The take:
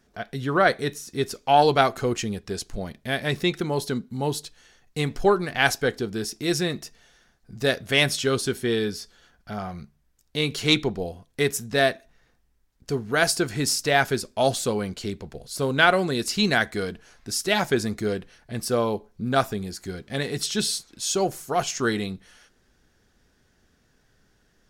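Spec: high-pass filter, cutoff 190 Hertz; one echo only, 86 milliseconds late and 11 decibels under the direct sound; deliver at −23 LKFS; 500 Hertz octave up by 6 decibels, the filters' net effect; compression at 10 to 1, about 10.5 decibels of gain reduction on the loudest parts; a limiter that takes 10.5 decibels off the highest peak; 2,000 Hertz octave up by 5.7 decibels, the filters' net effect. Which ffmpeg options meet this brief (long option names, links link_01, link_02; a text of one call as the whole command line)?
ffmpeg -i in.wav -af "highpass=190,equalizer=frequency=500:width_type=o:gain=7.5,equalizer=frequency=2000:width_type=o:gain=7,acompressor=threshold=-19dB:ratio=10,alimiter=limit=-16.5dB:level=0:latency=1,aecho=1:1:86:0.282,volume=5.5dB" out.wav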